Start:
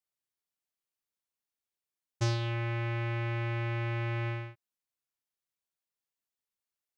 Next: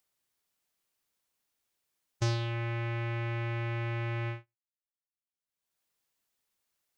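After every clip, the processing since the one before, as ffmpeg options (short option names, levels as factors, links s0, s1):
-af "agate=range=0.00562:threshold=0.02:ratio=16:detection=peak,acompressor=mode=upward:threshold=0.00891:ratio=2.5"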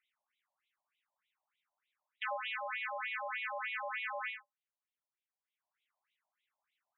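-af "afftfilt=real='re*between(b*sr/1024,740*pow(2900/740,0.5+0.5*sin(2*PI*3.3*pts/sr))/1.41,740*pow(2900/740,0.5+0.5*sin(2*PI*3.3*pts/sr))*1.41)':imag='im*between(b*sr/1024,740*pow(2900/740,0.5+0.5*sin(2*PI*3.3*pts/sr))/1.41,740*pow(2900/740,0.5+0.5*sin(2*PI*3.3*pts/sr))*1.41)':win_size=1024:overlap=0.75,volume=2.11"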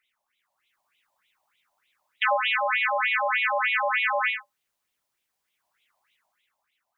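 -af "dynaudnorm=f=100:g=13:m=2,volume=2.82"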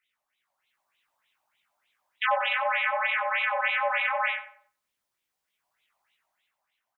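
-filter_complex "[0:a]flanger=delay=17:depth=4.8:speed=2.6,asplit=2[s0][s1];[s1]adelay=93,lowpass=f=1100:p=1,volume=0.398,asplit=2[s2][s3];[s3]adelay=93,lowpass=f=1100:p=1,volume=0.47,asplit=2[s4][s5];[s5]adelay=93,lowpass=f=1100:p=1,volume=0.47,asplit=2[s6][s7];[s7]adelay=93,lowpass=f=1100:p=1,volume=0.47,asplit=2[s8][s9];[s9]adelay=93,lowpass=f=1100:p=1,volume=0.47[s10];[s0][s2][s4][s6][s8][s10]amix=inputs=6:normalize=0"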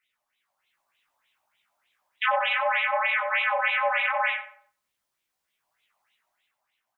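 -af "flanger=delay=8:depth=8.2:regen=-38:speed=0.31:shape=sinusoidal,volume=1.88"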